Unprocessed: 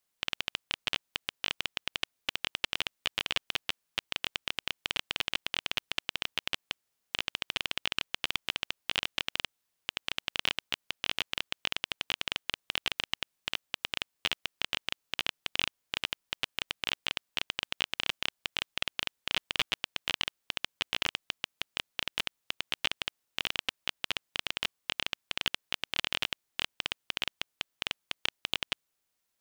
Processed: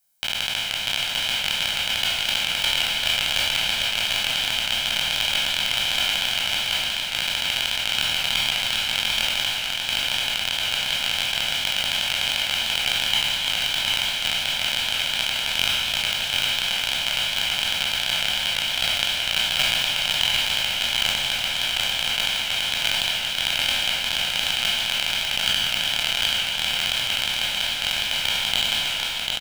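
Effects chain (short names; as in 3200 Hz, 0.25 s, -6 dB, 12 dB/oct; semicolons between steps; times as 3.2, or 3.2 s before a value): spectral trails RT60 1.80 s; high shelf 6200 Hz +11.5 dB; comb 1.3 ms, depth 70%; echo 0.745 s -3.5 dB; warbling echo 0.15 s, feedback 80%, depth 165 cents, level -11 dB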